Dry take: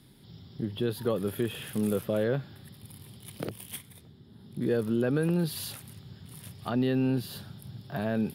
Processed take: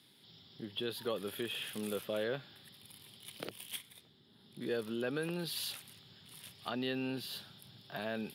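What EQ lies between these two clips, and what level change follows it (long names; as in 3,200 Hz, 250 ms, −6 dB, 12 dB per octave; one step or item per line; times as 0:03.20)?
high-pass filter 450 Hz 6 dB per octave
parametric band 3,300 Hz +8 dB 1.4 octaves
−5.5 dB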